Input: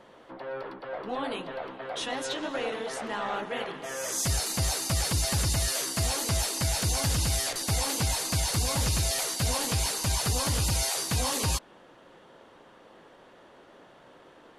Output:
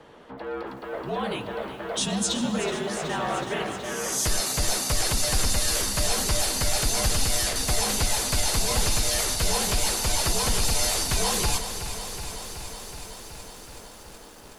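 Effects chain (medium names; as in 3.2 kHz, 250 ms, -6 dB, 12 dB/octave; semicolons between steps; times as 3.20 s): 1.97–2.59 s: graphic EQ 125/250/500/2000/4000/8000 Hz +3/+11/-7/-9/+3/+11 dB; frequency shift -65 Hz; bit-crushed delay 373 ms, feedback 80%, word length 9-bit, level -11 dB; trim +3.5 dB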